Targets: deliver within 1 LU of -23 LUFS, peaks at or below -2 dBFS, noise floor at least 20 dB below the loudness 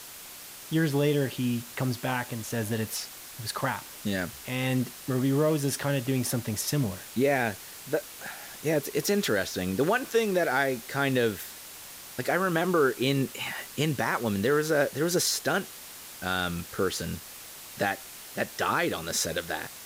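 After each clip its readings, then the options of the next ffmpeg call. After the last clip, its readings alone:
noise floor -45 dBFS; noise floor target -49 dBFS; loudness -28.5 LUFS; peak -13.0 dBFS; loudness target -23.0 LUFS
-> -af "afftdn=nr=6:nf=-45"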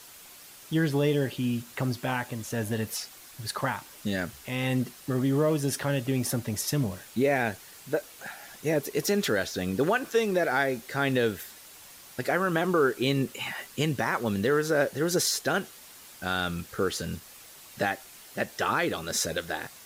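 noise floor -49 dBFS; loudness -28.5 LUFS; peak -13.0 dBFS; loudness target -23.0 LUFS
-> -af "volume=5.5dB"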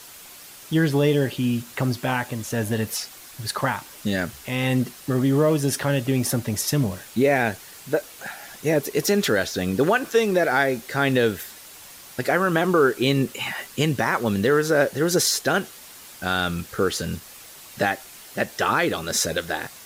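loudness -23.0 LUFS; peak -7.5 dBFS; noise floor -44 dBFS

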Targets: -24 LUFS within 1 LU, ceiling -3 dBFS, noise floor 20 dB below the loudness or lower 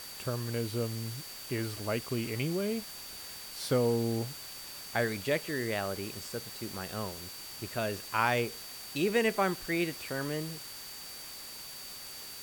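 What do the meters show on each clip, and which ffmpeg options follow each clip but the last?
steady tone 4600 Hz; tone level -47 dBFS; noise floor -45 dBFS; noise floor target -54 dBFS; loudness -34.0 LUFS; peak -12.5 dBFS; loudness target -24.0 LUFS
-> -af "bandreject=f=4.6k:w=30"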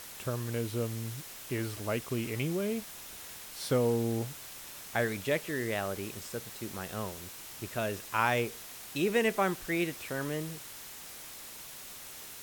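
steady tone none; noise floor -46 dBFS; noise floor target -54 dBFS
-> -af "afftdn=nr=8:nf=-46"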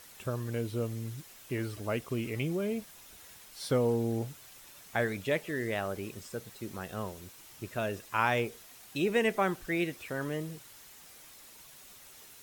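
noise floor -53 dBFS; noise floor target -54 dBFS
-> -af "afftdn=nr=6:nf=-53"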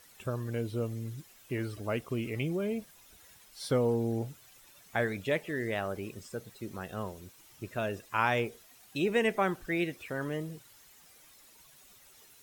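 noise floor -58 dBFS; loudness -33.5 LUFS; peak -13.0 dBFS; loudness target -24.0 LUFS
-> -af "volume=9.5dB"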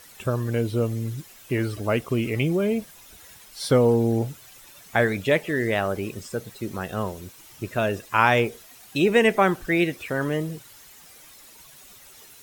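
loudness -24.0 LUFS; peak -3.5 dBFS; noise floor -49 dBFS

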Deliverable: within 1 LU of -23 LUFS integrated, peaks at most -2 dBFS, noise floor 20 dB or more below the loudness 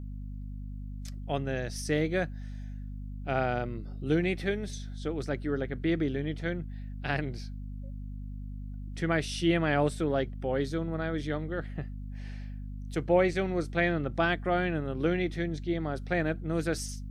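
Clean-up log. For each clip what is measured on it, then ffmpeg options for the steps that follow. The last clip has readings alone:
hum 50 Hz; harmonics up to 250 Hz; hum level -36 dBFS; loudness -31.0 LUFS; peak -12.0 dBFS; loudness target -23.0 LUFS
-> -af "bandreject=f=50:t=h:w=4,bandreject=f=100:t=h:w=4,bandreject=f=150:t=h:w=4,bandreject=f=200:t=h:w=4,bandreject=f=250:t=h:w=4"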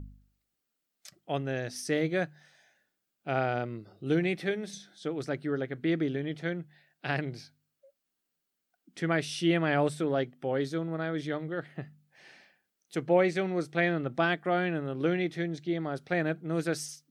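hum none; loudness -31.0 LUFS; peak -12.0 dBFS; loudness target -23.0 LUFS
-> -af "volume=8dB"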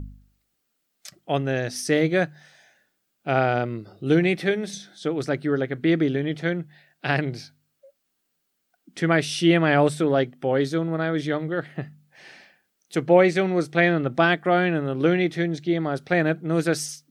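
loudness -23.0 LUFS; peak -4.0 dBFS; noise floor -75 dBFS

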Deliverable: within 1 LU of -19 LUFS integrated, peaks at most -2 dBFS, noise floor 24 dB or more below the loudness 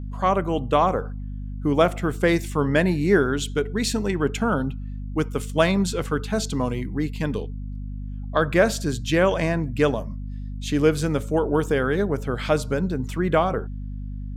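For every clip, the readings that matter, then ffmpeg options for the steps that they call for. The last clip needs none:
hum 50 Hz; harmonics up to 250 Hz; hum level -29 dBFS; loudness -23.0 LUFS; peak -4.0 dBFS; loudness target -19.0 LUFS
-> -af "bandreject=f=50:t=h:w=6,bandreject=f=100:t=h:w=6,bandreject=f=150:t=h:w=6,bandreject=f=200:t=h:w=6,bandreject=f=250:t=h:w=6"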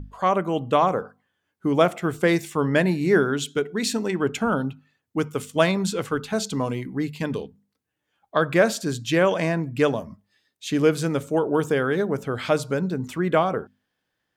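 hum none; loudness -23.5 LUFS; peak -4.0 dBFS; loudness target -19.0 LUFS
-> -af "volume=4.5dB,alimiter=limit=-2dB:level=0:latency=1"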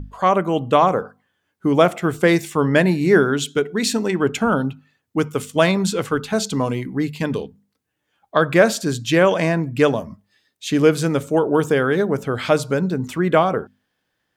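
loudness -19.0 LUFS; peak -2.0 dBFS; noise floor -74 dBFS

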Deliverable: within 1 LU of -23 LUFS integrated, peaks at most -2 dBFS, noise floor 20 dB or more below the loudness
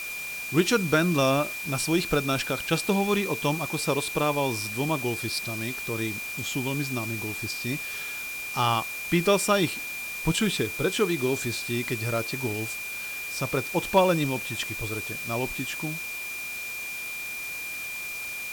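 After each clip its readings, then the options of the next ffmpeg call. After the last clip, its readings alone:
steady tone 2400 Hz; tone level -33 dBFS; noise floor -35 dBFS; noise floor target -47 dBFS; loudness -27.0 LUFS; peak -8.5 dBFS; loudness target -23.0 LUFS
-> -af "bandreject=f=2.4k:w=30"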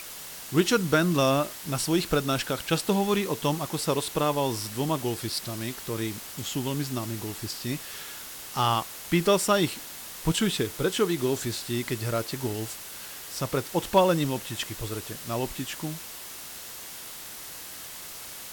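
steady tone none; noise floor -41 dBFS; noise floor target -49 dBFS
-> -af "afftdn=nr=8:nf=-41"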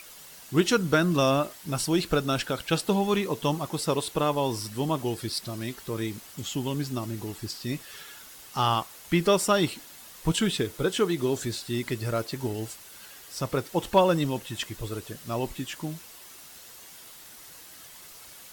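noise floor -48 dBFS; loudness -28.0 LUFS; peak -9.0 dBFS; loudness target -23.0 LUFS
-> -af "volume=5dB"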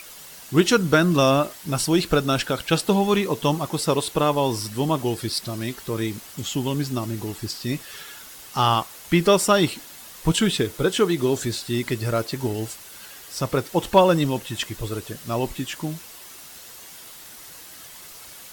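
loudness -23.0 LUFS; peak -4.0 dBFS; noise floor -43 dBFS

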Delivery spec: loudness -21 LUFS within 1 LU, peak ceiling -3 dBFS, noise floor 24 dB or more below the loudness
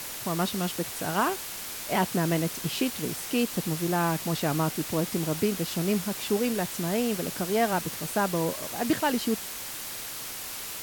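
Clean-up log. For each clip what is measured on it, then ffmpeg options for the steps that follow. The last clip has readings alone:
noise floor -37 dBFS; noise floor target -53 dBFS; loudness -28.5 LUFS; peak -13.0 dBFS; loudness target -21.0 LUFS
-> -af "afftdn=nr=16:nf=-37"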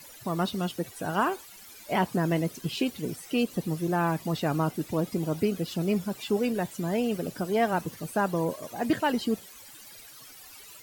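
noise floor -49 dBFS; noise floor target -53 dBFS
-> -af "afftdn=nr=6:nf=-49"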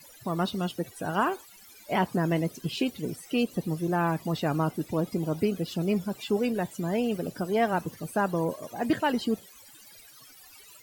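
noise floor -52 dBFS; noise floor target -53 dBFS
-> -af "afftdn=nr=6:nf=-52"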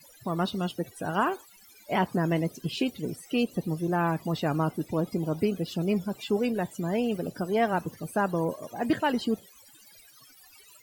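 noise floor -55 dBFS; loudness -29.0 LUFS; peak -14.0 dBFS; loudness target -21.0 LUFS
-> -af "volume=8dB"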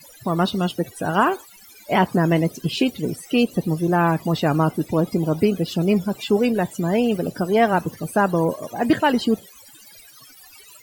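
loudness -21.0 LUFS; peak -6.0 dBFS; noise floor -47 dBFS

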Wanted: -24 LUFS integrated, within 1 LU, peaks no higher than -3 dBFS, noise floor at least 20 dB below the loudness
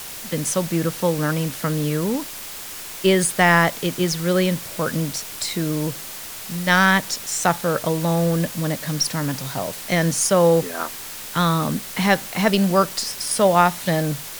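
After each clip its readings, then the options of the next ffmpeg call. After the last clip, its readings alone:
noise floor -34 dBFS; noise floor target -41 dBFS; loudness -20.5 LUFS; peak -2.5 dBFS; loudness target -24.0 LUFS
-> -af "afftdn=nr=7:nf=-34"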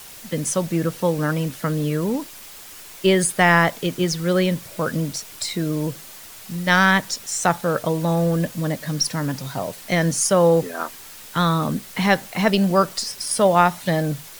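noise floor -41 dBFS; loudness -21.0 LUFS; peak -2.5 dBFS; loudness target -24.0 LUFS
-> -af "volume=-3dB"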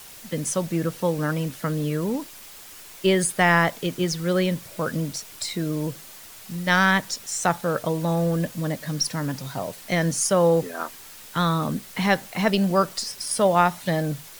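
loudness -24.0 LUFS; peak -5.5 dBFS; noise floor -44 dBFS

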